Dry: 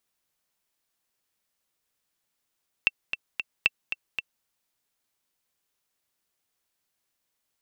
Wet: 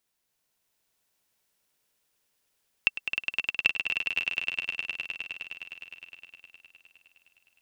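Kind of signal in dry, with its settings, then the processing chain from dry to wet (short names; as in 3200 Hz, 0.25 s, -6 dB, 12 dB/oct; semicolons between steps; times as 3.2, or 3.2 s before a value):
metronome 228 bpm, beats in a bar 3, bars 2, 2690 Hz, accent 9 dB -6.5 dBFS
notch 1200 Hz, Q 16; on a send: swelling echo 0.103 s, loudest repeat 5, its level -6.5 dB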